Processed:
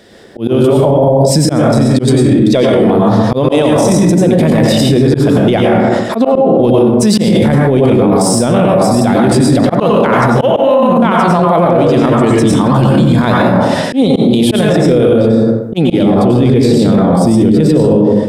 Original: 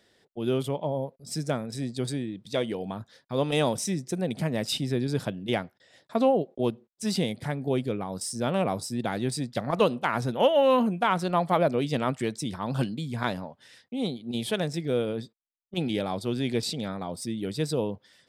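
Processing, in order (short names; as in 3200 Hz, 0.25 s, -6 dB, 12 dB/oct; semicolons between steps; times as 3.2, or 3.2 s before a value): plate-style reverb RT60 0.85 s, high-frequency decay 0.5×, pre-delay 80 ms, DRR -2 dB; auto swell 0.356 s; tilt shelf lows +6 dB, about 660 Hz, from 16.03 s lows +10 dB; AGC gain up to 14 dB; low shelf 270 Hz -7.5 dB; maximiser +24.5 dB; gain -1 dB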